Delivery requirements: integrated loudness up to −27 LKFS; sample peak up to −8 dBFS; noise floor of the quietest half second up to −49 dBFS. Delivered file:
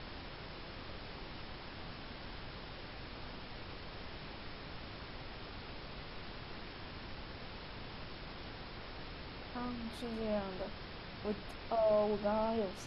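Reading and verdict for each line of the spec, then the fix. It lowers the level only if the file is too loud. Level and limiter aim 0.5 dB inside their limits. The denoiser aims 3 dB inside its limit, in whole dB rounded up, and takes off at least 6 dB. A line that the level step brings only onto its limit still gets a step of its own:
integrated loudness −42.0 LKFS: in spec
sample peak −21.5 dBFS: in spec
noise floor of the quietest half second −47 dBFS: out of spec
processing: broadband denoise 6 dB, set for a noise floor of −47 dBFS

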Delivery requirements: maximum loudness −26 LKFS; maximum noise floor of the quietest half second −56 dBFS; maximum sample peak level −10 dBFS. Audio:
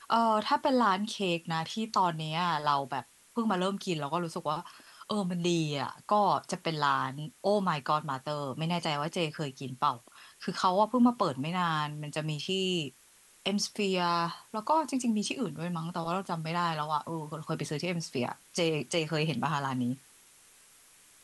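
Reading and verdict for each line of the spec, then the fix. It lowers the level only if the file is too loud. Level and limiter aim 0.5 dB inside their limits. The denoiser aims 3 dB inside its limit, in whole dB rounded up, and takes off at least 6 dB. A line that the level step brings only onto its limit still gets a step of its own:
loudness −31.0 LKFS: in spec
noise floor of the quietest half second −60 dBFS: in spec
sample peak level −13.5 dBFS: in spec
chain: no processing needed

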